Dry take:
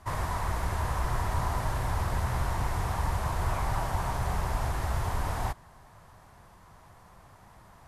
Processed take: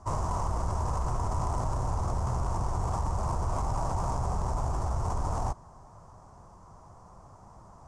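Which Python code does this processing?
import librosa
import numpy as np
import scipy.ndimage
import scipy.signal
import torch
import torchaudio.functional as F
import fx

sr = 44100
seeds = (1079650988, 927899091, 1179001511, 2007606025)

p1 = fx.tracing_dist(x, sr, depth_ms=0.29)
p2 = scipy.signal.sosfilt(scipy.signal.butter(4, 7900.0, 'lowpass', fs=sr, output='sos'), p1)
p3 = fx.band_shelf(p2, sr, hz=2600.0, db=-16.0, octaves=1.7)
p4 = fx.over_compress(p3, sr, threshold_db=-32.0, ratio=-1.0)
p5 = p3 + (p4 * librosa.db_to_amplitude(-1.0))
y = p5 * librosa.db_to_amplitude(-4.0)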